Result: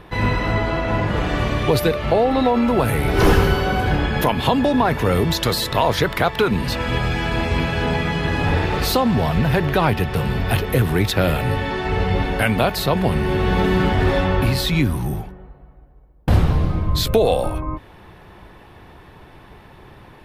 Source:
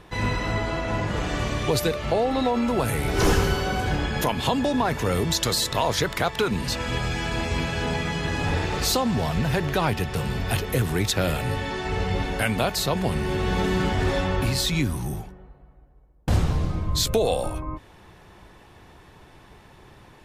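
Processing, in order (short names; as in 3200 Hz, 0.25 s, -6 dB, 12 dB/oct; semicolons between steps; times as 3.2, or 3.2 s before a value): bell 7000 Hz -11.5 dB 1.1 oct; gain +6 dB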